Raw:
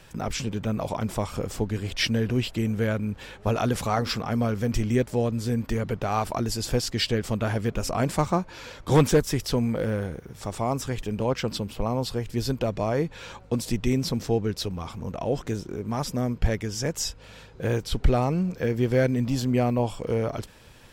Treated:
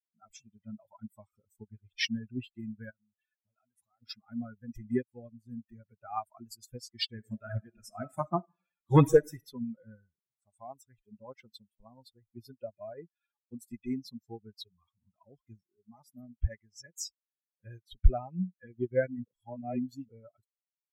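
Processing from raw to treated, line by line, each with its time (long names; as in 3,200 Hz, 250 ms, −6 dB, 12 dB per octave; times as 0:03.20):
0:02.90–0:04.02: downward compressor, threshold −32 dBFS
0:07.09–0:09.40: thrown reverb, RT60 1.2 s, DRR 3.5 dB
0:14.74–0:15.69: comb filter 0.9 ms, depth 31%
0:19.24–0:20.09: reverse
whole clip: spectral dynamics exaggerated over time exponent 3; expander for the loud parts 1.5 to 1, over −52 dBFS; level +3.5 dB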